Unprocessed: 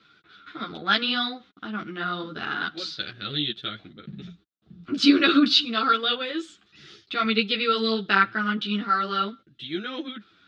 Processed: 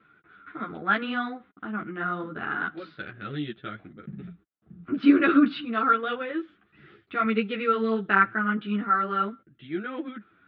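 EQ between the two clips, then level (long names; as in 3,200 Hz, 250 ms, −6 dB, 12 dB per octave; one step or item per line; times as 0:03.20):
low-pass filter 2,100 Hz 24 dB per octave
0.0 dB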